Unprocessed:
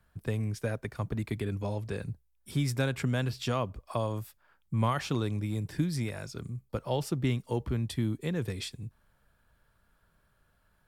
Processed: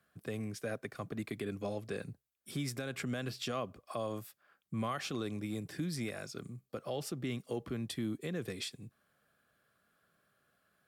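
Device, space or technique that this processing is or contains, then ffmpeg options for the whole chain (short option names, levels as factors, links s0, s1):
PA system with an anti-feedback notch: -af "highpass=190,asuperstop=centerf=920:order=4:qfactor=5.9,alimiter=level_in=1.26:limit=0.0631:level=0:latency=1:release=76,volume=0.794,volume=0.841"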